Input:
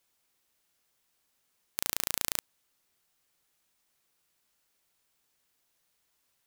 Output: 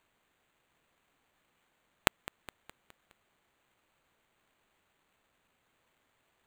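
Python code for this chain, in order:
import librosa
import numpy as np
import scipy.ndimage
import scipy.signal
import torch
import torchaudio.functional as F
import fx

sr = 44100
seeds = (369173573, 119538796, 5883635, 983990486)

p1 = fx.sample_hold(x, sr, seeds[0], rate_hz=5300.0, jitter_pct=0)
y = p1 + fx.echo_feedback(p1, sr, ms=208, feedback_pct=52, wet_db=-17, dry=0)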